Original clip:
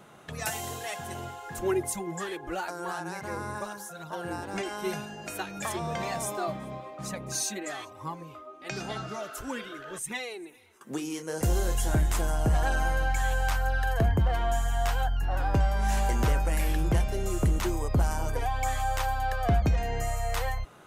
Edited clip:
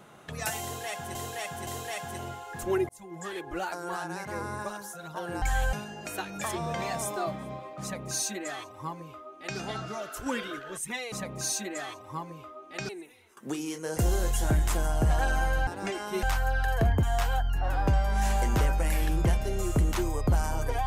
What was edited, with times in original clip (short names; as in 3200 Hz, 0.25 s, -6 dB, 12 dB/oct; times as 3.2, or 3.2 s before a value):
0.63–1.15 loop, 3 plays
1.85–2.39 fade in
4.38–4.94 swap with 13.11–13.42
7.03–8.8 copy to 10.33
9.47–9.8 gain +4 dB
14.22–14.7 cut